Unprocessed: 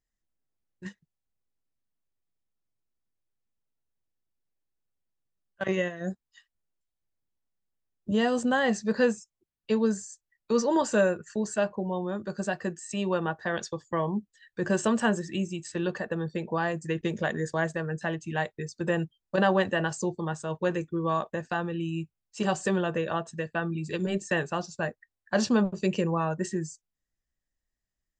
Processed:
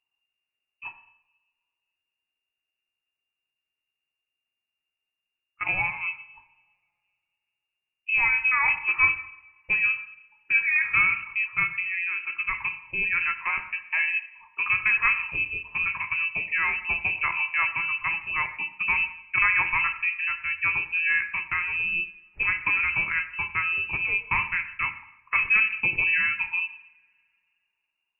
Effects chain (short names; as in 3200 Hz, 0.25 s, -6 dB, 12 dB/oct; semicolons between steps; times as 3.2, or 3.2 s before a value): two-slope reverb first 0.71 s, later 2.6 s, from -27 dB, DRR 6.5 dB; inverted band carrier 2800 Hz; gain +1.5 dB